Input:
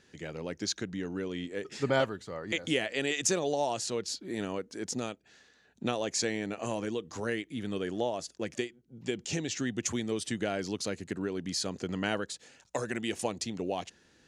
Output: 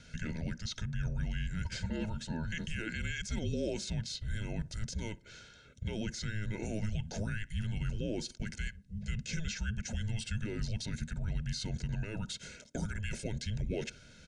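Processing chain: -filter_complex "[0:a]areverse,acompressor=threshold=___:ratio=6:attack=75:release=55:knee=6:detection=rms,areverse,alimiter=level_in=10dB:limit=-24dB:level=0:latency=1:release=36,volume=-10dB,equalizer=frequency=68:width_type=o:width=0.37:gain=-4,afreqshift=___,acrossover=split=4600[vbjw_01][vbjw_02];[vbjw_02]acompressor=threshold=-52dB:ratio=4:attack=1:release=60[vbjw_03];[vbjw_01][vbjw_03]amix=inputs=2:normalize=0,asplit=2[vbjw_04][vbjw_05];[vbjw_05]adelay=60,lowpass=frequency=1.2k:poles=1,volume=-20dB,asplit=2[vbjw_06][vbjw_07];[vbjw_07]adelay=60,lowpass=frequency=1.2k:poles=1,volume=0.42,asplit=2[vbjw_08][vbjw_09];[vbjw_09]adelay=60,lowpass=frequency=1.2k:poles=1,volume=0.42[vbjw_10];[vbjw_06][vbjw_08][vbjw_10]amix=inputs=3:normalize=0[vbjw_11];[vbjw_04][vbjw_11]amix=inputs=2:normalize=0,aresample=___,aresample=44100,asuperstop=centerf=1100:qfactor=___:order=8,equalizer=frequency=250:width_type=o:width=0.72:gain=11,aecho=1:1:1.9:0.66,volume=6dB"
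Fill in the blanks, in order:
-45dB, -320, 22050, 3.3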